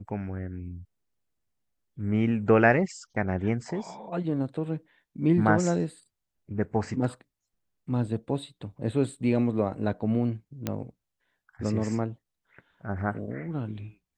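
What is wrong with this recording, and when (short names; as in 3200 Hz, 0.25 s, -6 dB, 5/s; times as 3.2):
10.67 pop -14 dBFS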